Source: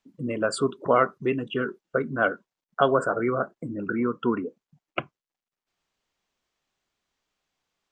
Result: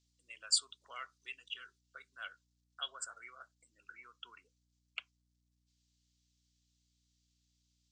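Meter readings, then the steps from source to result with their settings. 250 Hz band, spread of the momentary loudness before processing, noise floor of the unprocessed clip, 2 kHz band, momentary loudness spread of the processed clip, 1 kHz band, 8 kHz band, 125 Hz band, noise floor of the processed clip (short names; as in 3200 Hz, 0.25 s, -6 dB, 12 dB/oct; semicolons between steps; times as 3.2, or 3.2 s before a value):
under -40 dB, 12 LU, under -85 dBFS, -18.0 dB, 24 LU, -25.0 dB, n/a, under -35 dB, -79 dBFS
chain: Butterworth band-pass 5800 Hz, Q 1.3; hum 60 Hz, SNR 32 dB; gain +5 dB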